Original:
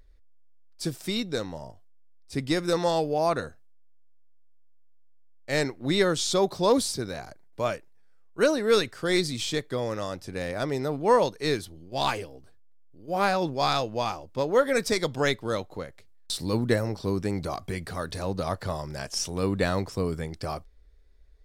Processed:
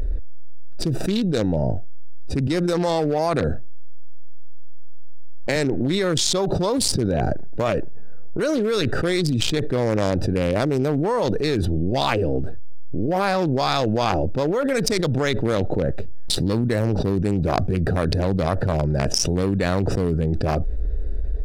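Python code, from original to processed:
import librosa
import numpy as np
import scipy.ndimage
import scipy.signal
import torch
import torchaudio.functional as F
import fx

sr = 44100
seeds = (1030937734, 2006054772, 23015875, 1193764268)

y = fx.band_squash(x, sr, depth_pct=40, at=(2.47, 5.56))
y = fx.wiener(y, sr, points=41)
y = fx.env_flatten(y, sr, amount_pct=100)
y = y * 10.0 ** (-4.0 / 20.0)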